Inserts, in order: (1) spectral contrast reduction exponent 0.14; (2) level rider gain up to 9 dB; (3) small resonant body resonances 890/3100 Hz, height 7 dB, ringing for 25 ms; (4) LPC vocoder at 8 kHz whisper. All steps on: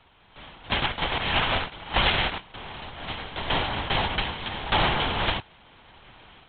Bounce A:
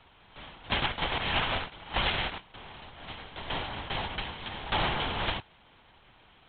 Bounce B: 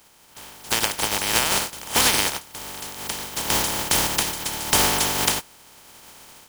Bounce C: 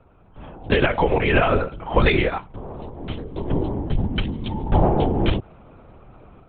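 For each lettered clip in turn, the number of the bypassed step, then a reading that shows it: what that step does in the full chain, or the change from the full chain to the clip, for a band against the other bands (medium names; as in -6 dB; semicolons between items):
2, momentary loudness spread change +4 LU; 4, 125 Hz band -4.5 dB; 1, 4 kHz band -17.0 dB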